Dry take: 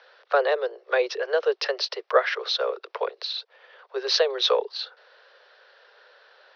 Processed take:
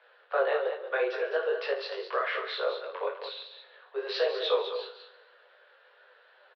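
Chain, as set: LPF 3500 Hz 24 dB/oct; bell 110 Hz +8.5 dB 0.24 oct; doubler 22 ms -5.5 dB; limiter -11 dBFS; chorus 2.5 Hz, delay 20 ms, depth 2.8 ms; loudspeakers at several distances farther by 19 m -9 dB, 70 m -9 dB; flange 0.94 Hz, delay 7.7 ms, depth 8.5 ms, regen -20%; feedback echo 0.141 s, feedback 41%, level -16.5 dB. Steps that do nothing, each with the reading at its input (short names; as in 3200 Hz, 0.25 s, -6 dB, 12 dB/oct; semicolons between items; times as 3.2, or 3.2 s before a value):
bell 110 Hz: input band starts at 340 Hz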